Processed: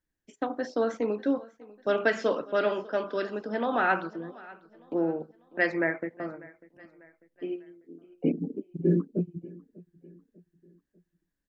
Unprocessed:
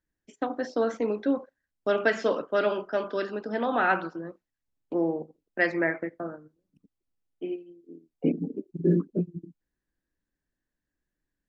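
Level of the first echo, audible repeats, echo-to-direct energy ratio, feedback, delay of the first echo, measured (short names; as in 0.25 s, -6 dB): -21.5 dB, 2, -20.5 dB, 45%, 0.595 s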